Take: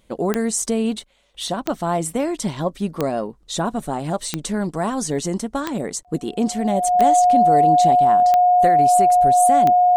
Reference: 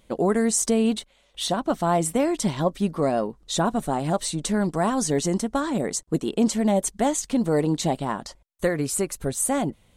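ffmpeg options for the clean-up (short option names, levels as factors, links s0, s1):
-af "adeclick=t=4,bandreject=f=720:w=30"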